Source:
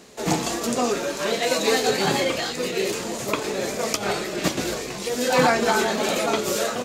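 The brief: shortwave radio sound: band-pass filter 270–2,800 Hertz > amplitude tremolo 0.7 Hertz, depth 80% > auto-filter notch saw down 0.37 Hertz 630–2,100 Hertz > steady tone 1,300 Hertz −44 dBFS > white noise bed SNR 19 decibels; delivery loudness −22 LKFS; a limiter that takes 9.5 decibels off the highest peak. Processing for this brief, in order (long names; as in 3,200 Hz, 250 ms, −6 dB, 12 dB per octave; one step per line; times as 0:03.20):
brickwall limiter −15 dBFS
band-pass filter 270–2,800 Hz
amplitude tremolo 0.7 Hz, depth 80%
auto-filter notch saw down 0.37 Hz 630–2,100 Hz
steady tone 1,300 Hz −44 dBFS
white noise bed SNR 19 dB
level +11 dB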